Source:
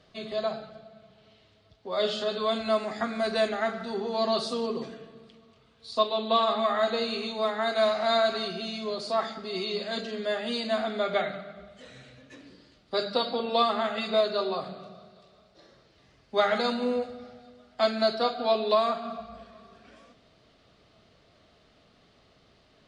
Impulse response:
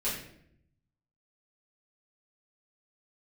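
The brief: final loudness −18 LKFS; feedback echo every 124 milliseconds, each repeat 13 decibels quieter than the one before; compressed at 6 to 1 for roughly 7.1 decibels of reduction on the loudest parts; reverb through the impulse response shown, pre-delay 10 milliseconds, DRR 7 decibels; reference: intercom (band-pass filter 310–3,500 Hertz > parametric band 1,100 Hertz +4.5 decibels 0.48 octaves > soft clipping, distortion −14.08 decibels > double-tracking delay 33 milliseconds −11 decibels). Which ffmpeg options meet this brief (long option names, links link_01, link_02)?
-filter_complex "[0:a]acompressor=threshold=-26dB:ratio=6,aecho=1:1:124|248|372:0.224|0.0493|0.0108,asplit=2[link_01][link_02];[1:a]atrim=start_sample=2205,adelay=10[link_03];[link_02][link_03]afir=irnorm=-1:irlink=0,volume=-13.5dB[link_04];[link_01][link_04]amix=inputs=2:normalize=0,highpass=310,lowpass=3500,equalizer=frequency=1100:width_type=o:width=0.48:gain=4.5,asoftclip=threshold=-25.5dB,asplit=2[link_05][link_06];[link_06]adelay=33,volume=-11dB[link_07];[link_05][link_07]amix=inputs=2:normalize=0,volume=14.5dB"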